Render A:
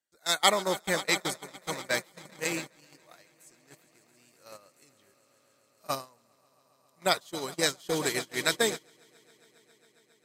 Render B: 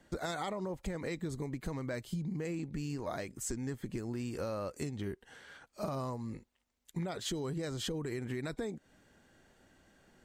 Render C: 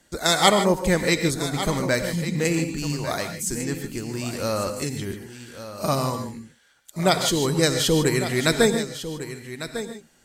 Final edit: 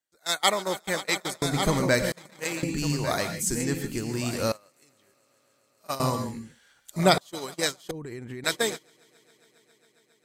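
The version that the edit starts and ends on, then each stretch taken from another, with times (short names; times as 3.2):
A
1.42–2.12 from C
2.63–4.52 from C
6–7.18 from C
7.91–8.44 from B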